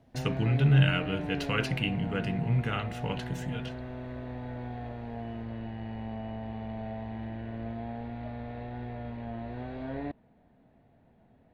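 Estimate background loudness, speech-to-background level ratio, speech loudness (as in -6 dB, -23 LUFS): -38.5 LUFS, 9.5 dB, -29.0 LUFS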